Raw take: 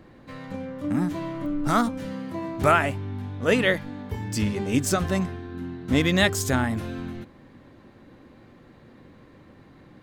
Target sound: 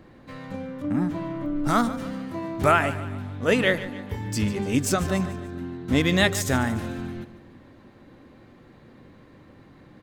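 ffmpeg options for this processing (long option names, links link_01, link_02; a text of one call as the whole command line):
ffmpeg -i in.wav -filter_complex "[0:a]asettb=1/sr,asplit=3[link_01][link_02][link_03];[link_01]atrim=end=0.824[link_04];[link_02]atrim=start=0.82:end=1.56,asetpts=PTS-STARTPTS,afade=type=in:duration=0.004:curve=qsin,afade=type=out:start_time=0.736:duration=0.004:curve=qsin,highshelf=frequency=3700:gain=-10[link_05];[link_03]atrim=start=1.556[link_06];[link_04][link_05]acrossfade=duration=0.004:curve1=hsin:curve2=qsin[link_07];[link_07][link_06]acrossfade=duration=0.004:curve1=qsin:curve2=hsin,aecho=1:1:146|292|438|584:0.178|0.0836|0.0393|0.0185" out.wav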